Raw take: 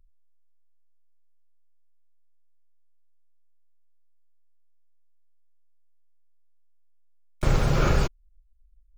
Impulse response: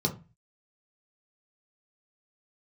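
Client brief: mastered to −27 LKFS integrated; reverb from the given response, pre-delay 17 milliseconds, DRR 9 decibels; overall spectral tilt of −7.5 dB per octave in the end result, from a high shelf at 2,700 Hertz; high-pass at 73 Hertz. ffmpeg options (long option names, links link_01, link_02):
-filter_complex "[0:a]highpass=73,highshelf=frequency=2700:gain=-7.5,asplit=2[link_01][link_02];[1:a]atrim=start_sample=2205,adelay=17[link_03];[link_02][link_03]afir=irnorm=-1:irlink=0,volume=-16.5dB[link_04];[link_01][link_04]amix=inputs=2:normalize=0,volume=-3.5dB"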